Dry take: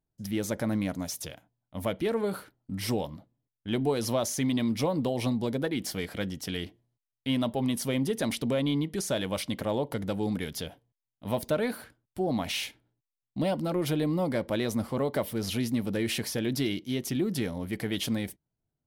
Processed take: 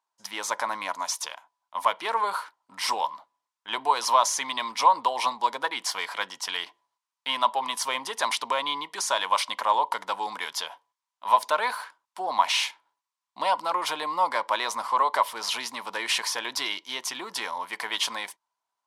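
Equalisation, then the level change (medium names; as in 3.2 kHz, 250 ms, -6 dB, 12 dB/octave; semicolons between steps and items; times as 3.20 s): resonant high-pass 990 Hz, resonance Q 9; low-pass 6.6 kHz 12 dB/octave; treble shelf 4.6 kHz +9 dB; +4.0 dB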